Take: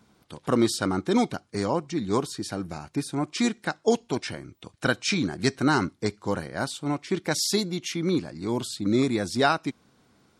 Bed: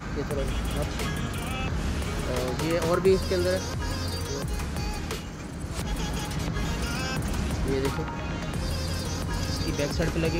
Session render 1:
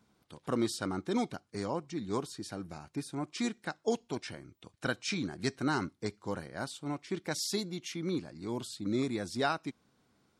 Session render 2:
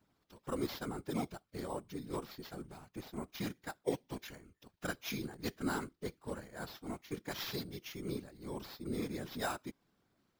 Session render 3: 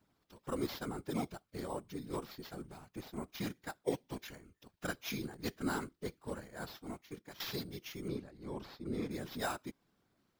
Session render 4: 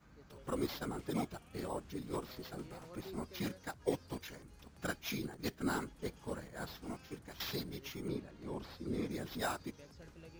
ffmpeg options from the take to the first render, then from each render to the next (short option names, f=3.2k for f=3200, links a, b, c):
-af "volume=-9dB"
-af "acrusher=samples=5:mix=1:aa=0.000001,afftfilt=real='hypot(re,im)*cos(2*PI*random(0))':imag='hypot(re,im)*sin(2*PI*random(1))':win_size=512:overlap=0.75"
-filter_complex "[0:a]asettb=1/sr,asplit=3[a][b][c];[a]atrim=end=8.084[d];[b]atrim=start=8.08:end=9.11,asetpts=PTS-STARTPTS,afade=t=in:d=0.004:c=qsin,afade=t=out:st=1.026:d=0.004:c=qsin,aemphasis=mode=reproduction:type=50kf[e];[c]atrim=start=9.106[f];[d][e]acrossfade=d=0.004:c1=hsin:c2=qsin[g];[g][f]acrossfade=d=0.004:c1=qsin:c2=hsin,asplit=2[h][i];[h]atrim=end=7.4,asetpts=PTS-STARTPTS,afade=t=out:st=6.72:d=0.68:silence=0.188365[j];[i]atrim=start=7.4,asetpts=PTS-STARTPTS,afade=t=in:d=0.004:c=hsin:silence=0.188365[k];[j][k]concat=n=2:v=0:a=1"
-filter_complex "[1:a]volume=-29dB[a];[0:a][a]amix=inputs=2:normalize=0"